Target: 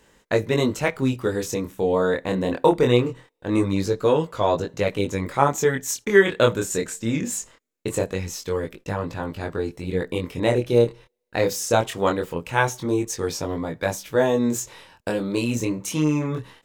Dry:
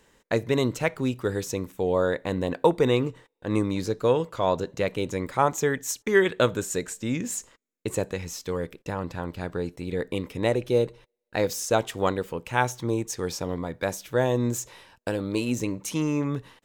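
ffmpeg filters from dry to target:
-af "flanger=delay=19:depth=7.5:speed=0.22,volume=2.11"

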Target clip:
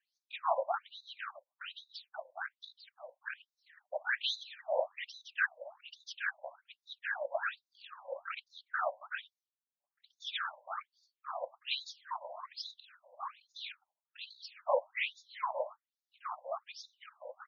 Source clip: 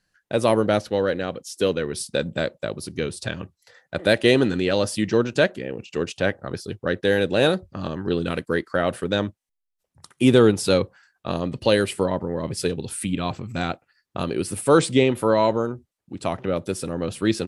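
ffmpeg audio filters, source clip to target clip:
-af "afftfilt=real='hypot(re,im)*cos(2*PI*random(0))':imag='hypot(re,im)*sin(2*PI*random(1))':win_size=512:overlap=0.75,afftfilt=real='re*between(b*sr/1024,710*pow(5000/710,0.5+0.5*sin(2*PI*1.2*pts/sr))/1.41,710*pow(5000/710,0.5+0.5*sin(2*PI*1.2*pts/sr))*1.41)':imag='im*between(b*sr/1024,710*pow(5000/710,0.5+0.5*sin(2*PI*1.2*pts/sr))/1.41,710*pow(5000/710,0.5+0.5*sin(2*PI*1.2*pts/sr))*1.41)':win_size=1024:overlap=0.75"

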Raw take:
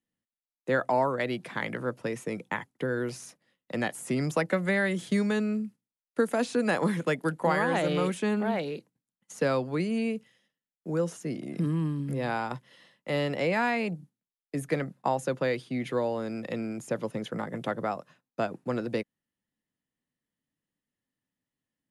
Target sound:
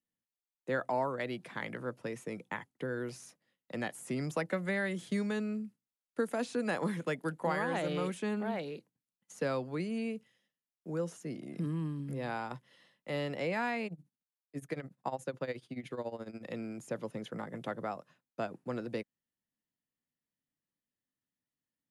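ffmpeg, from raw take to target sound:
-filter_complex "[0:a]asettb=1/sr,asplit=3[s0][s1][s2];[s0]atrim=end=13.864[s3];[s1]atrim=start=13.86:end=16.43,asetpts=PTS-STARTPTS,afade=t=in:d=0.004:c=qsin,afade=t=out:st=2.566:d=0.004:c=qsin,tremolo=f=14:d=0.83[s4];[s2]atrim=start=16.426[s5];[s3][s4]acrossfade=d=0.004:c1=hsin:c2=qsin[s6];[s6][s5]acrossfade=d=0.004:c1=qsin:c2=hsin,volume=0.447"

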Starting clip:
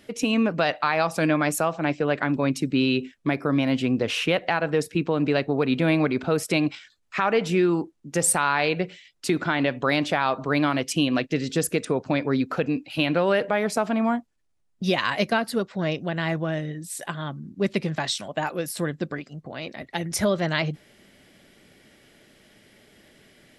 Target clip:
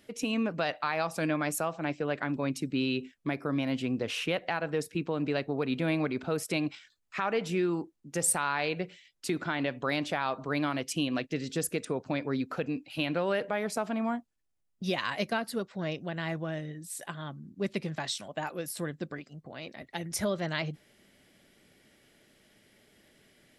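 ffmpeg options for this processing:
-af "highshelf=f=8400:g=5,volume=0.398"

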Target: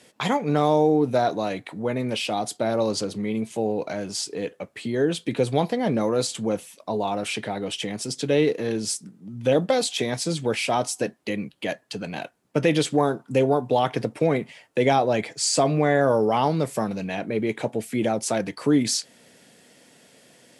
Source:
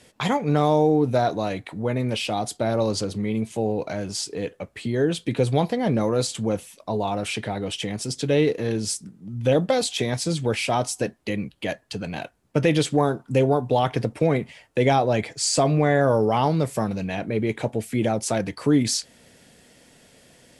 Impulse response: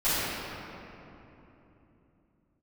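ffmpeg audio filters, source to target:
-af "highpass=160"

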